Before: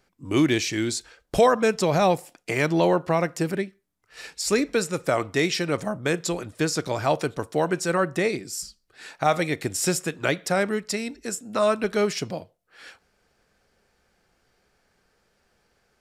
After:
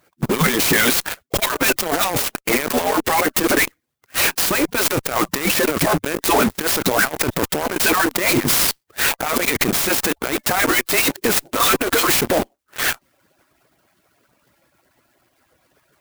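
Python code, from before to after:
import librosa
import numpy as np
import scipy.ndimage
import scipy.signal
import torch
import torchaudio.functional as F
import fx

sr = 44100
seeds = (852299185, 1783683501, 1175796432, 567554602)

p1 = fx.hpss_only(x, sr, part='percussive')
p2 = fx.highpass(p1, sr, hz=140.0, slope=6)
p3 = fx.over_compress(p2, sr, threshold_db=-37.0, ratio=-1.0)
p4 = fx.fuzz(p3, sr, gain_db=45.0, gate_db=-42.0)
p5 = p3 + (p4 * librosa.db_to_amplitude(-6.0))
p6 = fx.clock_jitter(p5, sr, seeds[0], jitter_ms=0.048)
y = p6 * librosa.db_to_amplitude(4.5)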